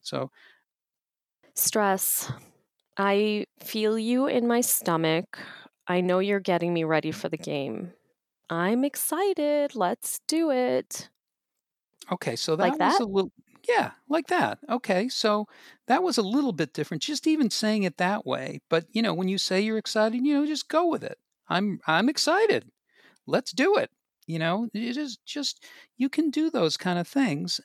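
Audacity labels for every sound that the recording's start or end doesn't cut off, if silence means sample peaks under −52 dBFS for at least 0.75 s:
1.430000	11.070000	sound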